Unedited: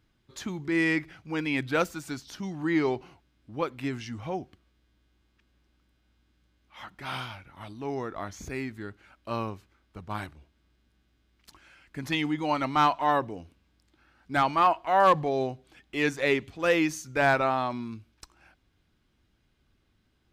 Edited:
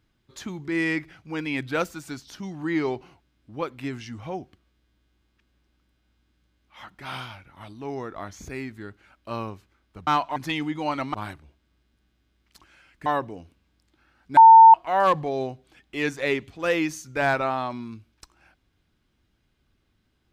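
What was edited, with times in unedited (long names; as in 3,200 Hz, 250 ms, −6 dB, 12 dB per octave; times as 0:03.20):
0:10.07–0:11.99: swap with 0:12.77–0:13.06
0:14.37–0:14.74: beep over 900 Hz −6 dBFS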